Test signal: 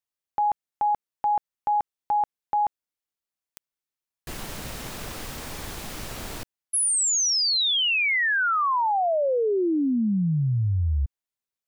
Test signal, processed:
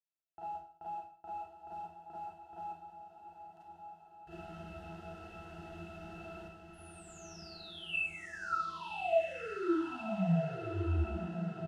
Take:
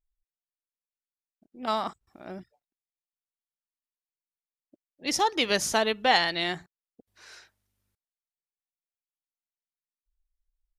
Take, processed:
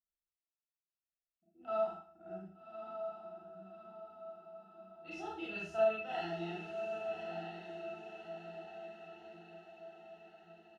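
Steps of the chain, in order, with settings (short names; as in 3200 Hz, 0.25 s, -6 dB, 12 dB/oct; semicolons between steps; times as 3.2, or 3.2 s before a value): low shelf 420 Hz -11 dB; in parallel at +1 dB: compressor, threshold -38 dBFS; on the sum: modulation noise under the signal 17 dB; octave resonator E, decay 0.16 s; on a send: diffused feedback echo 1.181 s, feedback 54%, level -6 dB; on the sum: Schroeder reverb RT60 0.49 s, combs from 32 ms, DRR -7.5 dB; downsampling 32000 Hz; gain -6 dB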